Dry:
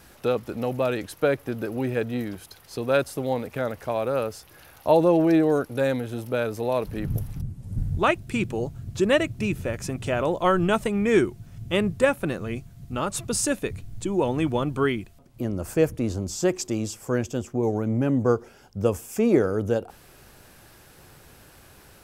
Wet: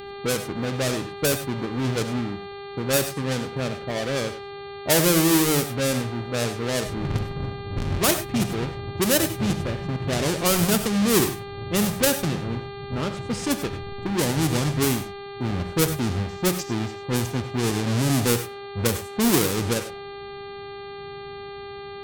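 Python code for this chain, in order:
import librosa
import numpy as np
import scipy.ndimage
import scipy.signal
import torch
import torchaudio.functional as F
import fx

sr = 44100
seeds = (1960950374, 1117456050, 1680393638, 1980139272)

p1 = fx.halfwave_hold(x, sr)
p2 = fx.env_lowpass(p1, sr, base_hz=380.0, full_db=-14.5)
p3 = fx.peak_eq(p2, sr, hz=150.0, db=8.5, octaves=2.5)
p4 = fx.dmg_buzz(p3, sr, base_hz=400.0, harmonics=11, level_db=-30.0, tilt_db=-8, odd_only=False)
p5 = np.clip(10.0 ** (12.5 / 20.0) * p4, -1.0, 1.0) / 10.0 ** (12.5 / 20.0)
p6 = p4 + (p5 * 10.0 ** (-6.0 / 20.0))
p7 = librosa.effects.preemphasis(p6, coef=0.8, zi=[0.0])
p8 = fx.rev_gated(p7, sr, seeds[0], gate_ms=120, shape='rising', drr_db=8.5)
y = p8 * 10.0 ** (1.5 / 20.0)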